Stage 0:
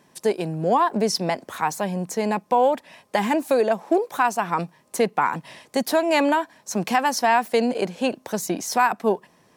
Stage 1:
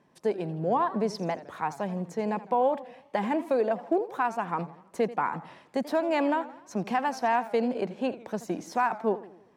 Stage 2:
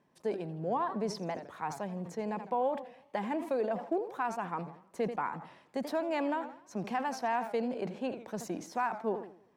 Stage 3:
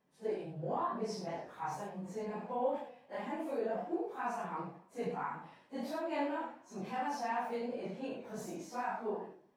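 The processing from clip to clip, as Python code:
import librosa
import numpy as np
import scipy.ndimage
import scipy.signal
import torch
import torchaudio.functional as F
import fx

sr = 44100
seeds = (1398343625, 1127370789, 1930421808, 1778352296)

y1 = fx.lowpass(x, sr, hz=1600.0, slope=6)
y1 = fx.echo_warbled(y1, sr, ms=82, feedback_pct=50, rate_hz=2.8, cents=176, wet_db=-16)
y1 = y1 * librosa.db_to_amplitude(-5.5)
y2 = fx.sustainer(y1, sr, db_per_s=110.0)
y2 = y2 * librosa.db_to_amplitude(-6.5)
y3 = fx.phase_scramble(y2, sr, seeds[0], window_ms=100)
y3 = fx.room_early_taps(y3, sr, ms=(21, 72), db=(-5.5, -5.5))
y3 = y3 * librosa.db_to_amplitude(-6.0)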